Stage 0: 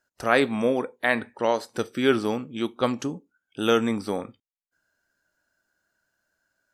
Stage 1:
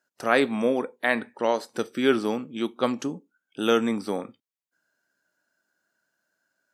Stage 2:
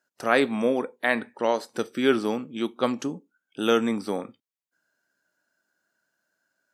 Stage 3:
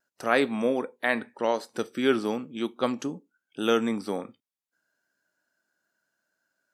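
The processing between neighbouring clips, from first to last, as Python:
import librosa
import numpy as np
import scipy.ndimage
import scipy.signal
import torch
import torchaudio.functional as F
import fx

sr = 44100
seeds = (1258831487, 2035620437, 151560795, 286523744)

y1 = scipy.signal.sosfilt(scipy.signal.cheby1(2, 1.0, 190.0, 'highpass', fs=sr, output='sos'), x)
y2 = y1
y3 = fx.vibrato(y2, sr, rate_hz=0.42, depth_cents=8.5)
y3 = y3 * 10.0 ** (-2.0 / 20.0)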